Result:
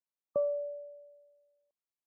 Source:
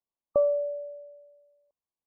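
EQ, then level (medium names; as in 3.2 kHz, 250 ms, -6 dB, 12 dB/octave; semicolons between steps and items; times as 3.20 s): high-pass 110 Hz; dynamic bell 180 Hz, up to +7 dB, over -44 dBFS, Q 0.76; -8.5 dB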